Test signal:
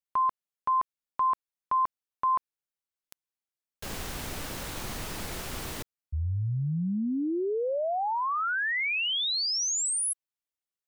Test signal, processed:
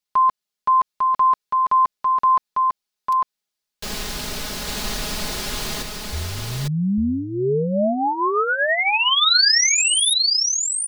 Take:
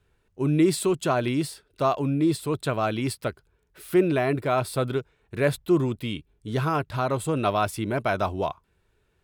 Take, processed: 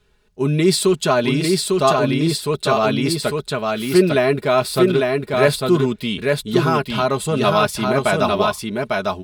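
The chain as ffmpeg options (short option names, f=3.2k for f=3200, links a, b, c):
-filter_complex "[0:a]equalizer=f=4.5k:w=1.2:g=7,aecho=1:1:4.8:0.61,asplit=2[a][b];[b]aecho=0:1:850:0.708[c];[a][c]amix=inputs=2:normalize=0,volume=5dB"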